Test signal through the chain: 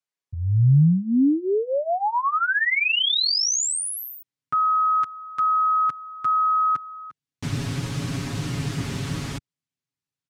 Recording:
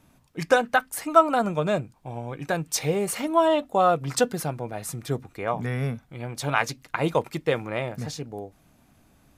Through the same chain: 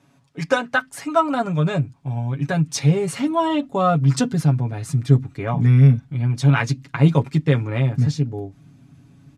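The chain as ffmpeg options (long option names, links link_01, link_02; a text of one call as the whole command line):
ffmpeg -i in.wav -af "highpass=110,lowpass=7500,aecho=1:1:7.2:0.79,asubboost=boost=7:cutoff=220" out.wav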